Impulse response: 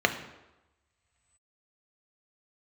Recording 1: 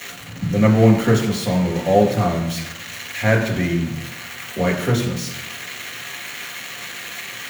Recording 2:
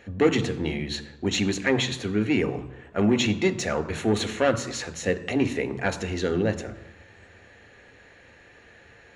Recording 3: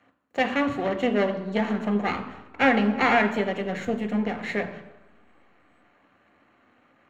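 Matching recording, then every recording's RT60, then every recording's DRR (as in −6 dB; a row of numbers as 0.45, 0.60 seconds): 3; 1.0, 1.0, 1.0 seconds; −0.5, 10.0, 5.5 decibels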